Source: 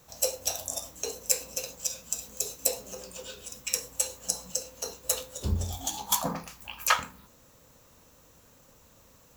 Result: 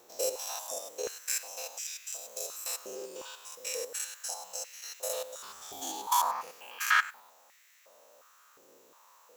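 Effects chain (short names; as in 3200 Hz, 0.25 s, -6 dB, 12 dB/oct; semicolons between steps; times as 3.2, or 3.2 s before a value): stepped spectrum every 0.1 s; stepped high-pass 2.8 Hz 370–2000 Hz; gain -1.5 dB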